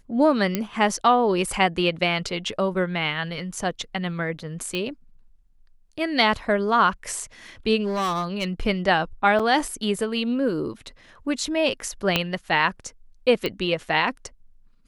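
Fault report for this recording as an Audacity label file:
0.550000	0.550000	pop -8 dBFS
4.750000	4.750000	pop -15 dBFS
7.830000	8.620000	clipped -21 dBFS
9.390000	9.400000	dropout 6 ms
12.160000	12.160000	pop -5 dBFS
13.460000	13.460000	pop -12 dBFS

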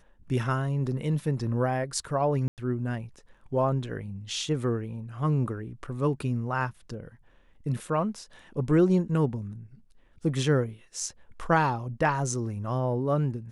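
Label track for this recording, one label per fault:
2.480000	2.580000	dropout 98 ms

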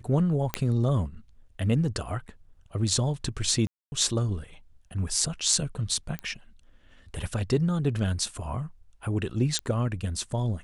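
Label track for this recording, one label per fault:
0.540000	0.540000	pop -10 dBFS
3.670000	3.920000	dropout 250 ms
6.190000	6.190000	pop -20 dBFS
9.590000	9.590000	pop -14 dBFS

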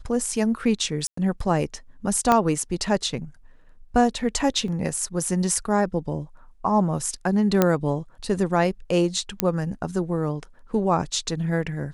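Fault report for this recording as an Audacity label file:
1.070000	1.170000	dropout 104 ms
2.320000	2.320000	pop -6 dBFS
4.680000	4.680000	dropout 2.2 ms
7.620000	7.620000	pop -4 dBFS
9.400000	9.400000	pop -3 dBFS

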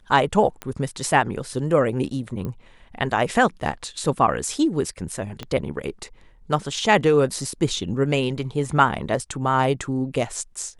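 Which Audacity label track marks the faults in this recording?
0.620000	0.620000	pop -15 dBFS
2.450000	2.450000	pop -19 dBFS
5.430000	5.430000	pop -17 dBFS

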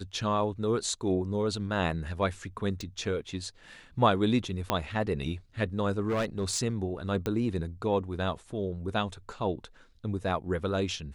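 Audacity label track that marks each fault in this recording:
2.810000	2.810000	pop
4.700000	4.700000	pop -10 dBFS
6.080000	6.600000	clipped -25 dBFS
7.260000	7.260000	pop -17 dBFS

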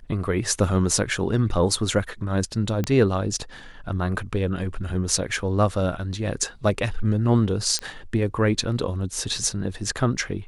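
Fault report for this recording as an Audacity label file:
2.840000	2.840000	pop -12 dBFS
7.790000	7.790000	pop -11 dBFS

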